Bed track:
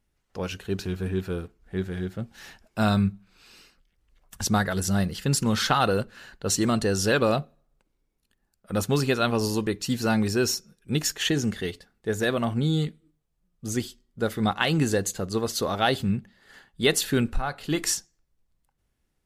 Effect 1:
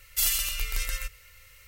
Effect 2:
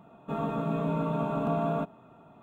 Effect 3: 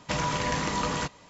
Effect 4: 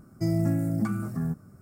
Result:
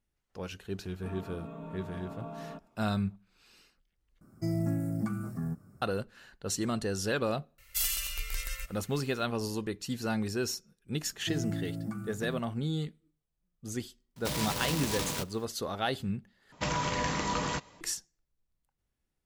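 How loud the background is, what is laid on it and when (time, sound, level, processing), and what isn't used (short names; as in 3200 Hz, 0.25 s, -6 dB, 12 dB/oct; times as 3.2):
bed track -8.5 dB
0.74 add 2 -14 dB
4.21 replace with 4 -5.5 dB
7.58 add 1 -5.5 dB
11.06 add 4 -10 dB
14.16 add 3 -5.5 dB + noise-modulated delay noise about 3500 Hz, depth 0.18 ms
16.52 replace with 3 -3 dB + mismatched tape noise reduction decoder only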